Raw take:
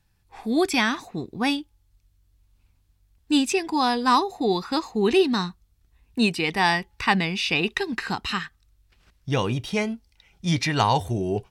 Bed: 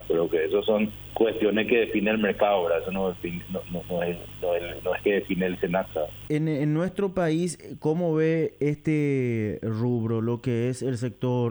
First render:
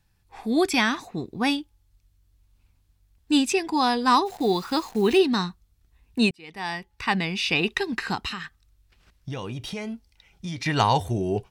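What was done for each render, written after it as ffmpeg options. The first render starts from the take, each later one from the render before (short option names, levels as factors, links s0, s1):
-filter_complex "[0:a]asplit=3[s0][s1][s2];[s0]afade=t=out:st=4.25:d=0.02[s3];[s1]acrusher=bits=8:dc=4:mix=0:aa=0.000001,afade=t=in:st=4.25:d=0.02,afade=t=out:st=5.17:d=0.02[s4];[s2]afade=t=in:st=5.17:d=0.02[s5];[s3][s4][s5]amix=inputs=3:normalize=0,asettb=1/sr,asplit=3[s6][s7][s8];[s6]atrim=end=8.284[s9];[s7]atrim=start=8.28:end=10.66,asetpts=PTS-STARTPTS,afade=t=in:d=0.004:c=qsin,afade=t=out:st=2.376:d=0.004:c=qsin,acompressor=threshold=0.0355:ratio=6:attack=3.2:release=140:knee=1:detection=peak[s10];[s8]atrim=start=10.656[s11];[s9][s10]acrossfade=d=0.004:c1=hsin:c2=qsin[s12];[s12][s11]acrossfade=d=0.004:c1=qsin:c2=hsin,asplit=2[s13][s14];[s13]atrim=end=6.31,asetpts=PTS-STARTPTS,afade=t=out:st=6.306:d=0.004:c=hsin[s15];[s14]atrim=start=6.31,asetpts=PTS-STARTPTS,afade=t=in:d=1.18[s16];[s15][s16]concat=n=2:v=0:a=1"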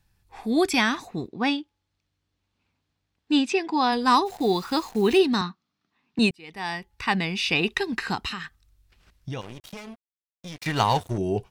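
-filter_complex "[0:a]asplit=3[s0][s1][s2];[s0]afade=t=out:st=1.27:d=0.02[s3];[s1]highpass=180,lowpass=4600,afade=t=in:st=1.27:d=0.02,afade=t=out:st=3.91:d=0.02[s4];[s2]afade=t=in:st=3.91:d=0.02[s5];[s3][s4][s5]amix=inputs=3:normalize=0,asettb=1/sr,asplit=3[s6][s7][s8];[s6]atrim=end=5.414[s9];[s7]atrim=start=5.41:end=6.19,asetpts=PTS-STARTPTS,afade=t=in:d=0.004:c=qsin,afade=t=out:st=0.776:d=0.004:c=qsin,highpass=f=180:w=0.5412,highpass=f=180:w=1.3066,equalizer=f=230:t=q:w=4:g=6,equalizer=f=480:t=q:w=4:g=-8,equalizer=f=1200:t=q:w=4:g=7,lowpass=f=5200:w=0.5412,lowpass=f=5200:w=1.3066[s10];[s8]atrim=start=6.186[s11];[s9][s10]acrossfade=d=0.004:c1=hsin:c2=qsin[s12];[s12][s11]acrossfade=d=0.004:c1=qsin:c2=hsin,asettb=1/sr,asplit=3[s13][s14][s15];[s13]atrim=end=9.414[s16];[s14]atrim=start=9.41:end=11.18,asetpts=PTS-STARTPTS,afade=t=in:d=0.004:c=qsin,afade=t=out:st=1.766:d=0.004:c=qsin,aeval=exprs='sgn(val(0))*max(abs(val(0))-0.02,0)':c=same[s17];[s15]atrim=start=11.176[s18];[s16][s17]acrossfade=d=0.004:c1=hsin:c2=qsin[s19];[s19][s18]acrossfade=d=0.004:c1=qsin:c2=hsin"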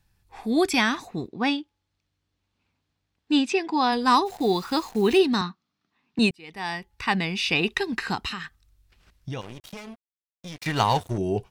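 -af anull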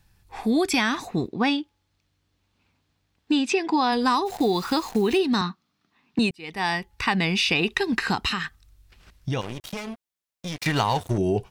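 -filter_complex "[0:a]asplit=2[s0][s1];[s1]alimiter=limit=0.119:level=0:latency=1:release=187,volume=1.06[s2];[s0][s2]amix=inputs=2:normalize=0,acompressor=threshold=0.126:ratio=6"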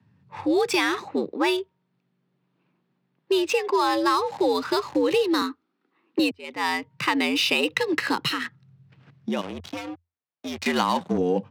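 -af "adynamicsmooth=sensitivity=8:basefreq=2300,afreqshift=85"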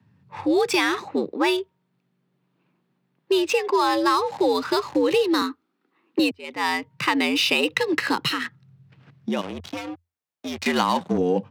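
-af "volume=1.19"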